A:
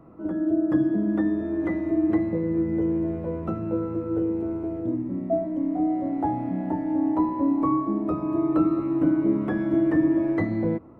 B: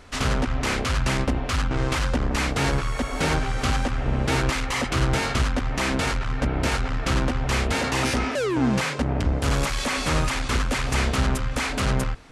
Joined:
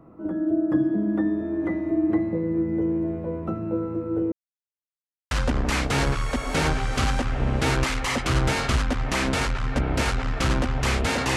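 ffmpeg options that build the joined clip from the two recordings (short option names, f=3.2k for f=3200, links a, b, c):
-filter_complex "[0:a]apad=whole_dur=11.36,atrim=end=11.36,asplit=2[a][b];[a]atrim=end=4.32,asetpts=PTS-STARTPTS,afade=t=out:st=4.316:d=0.004:c=hsin[c];[b]atrim=start=4.32:end=5.31,asetpts=PTS-STARTPTS,volume=0[d];[1:a]atrim=start=1.97:end=8.02,asetpts=PTS-STARTPTS,afade=t=in:d=0.004:c=hsin[e];[c][d][e]concat=n=3:v=0:a=1"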